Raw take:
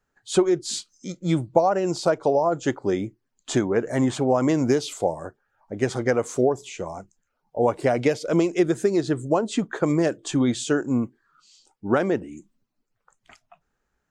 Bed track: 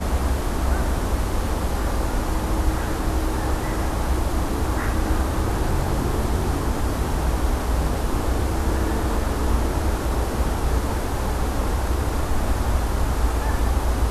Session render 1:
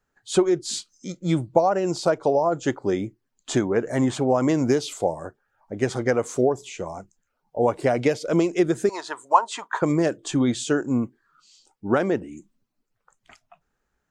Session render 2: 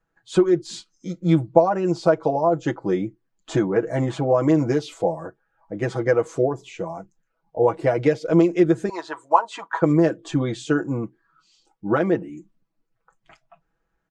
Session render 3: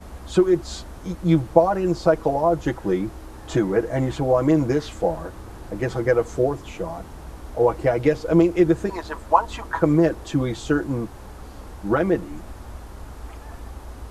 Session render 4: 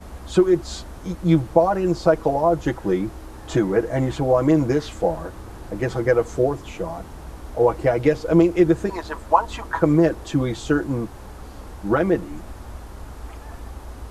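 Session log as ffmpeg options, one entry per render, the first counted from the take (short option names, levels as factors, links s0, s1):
-filter_complex "[0:a]asettb=1/sr,asplit=3[s0][s1][s2];[s0]atrim=end=8.894[s3];[s1]atrim=start=8.89:end=9.82,asetpts=PTS-STARTPTS,afade=t=in:d=0.004:c=qsin,afade=t=out:st=0.926:d=0.004:c=qsin,highpass=f=960:t=q:w=7.7[s4];[s2]atrim=start=9.816[s5];[s3][s4]acrossfade=d=0.004:c1=hsin:c2=qsin[s6];[s6][s5]acrossfade=d=0.004:c1=qsin:c2=hsin"
-af "aemphasis=mode=reproduction:type=75kf,aecho=1:1:6.1:0.77"
-filter_complex "[1:a]volume=0.158[s0];[0:a][s0]amix=inputs=2:normalize=0"
-af "volume=1.12,alimiter=limit=0.708:level=0:latency=1"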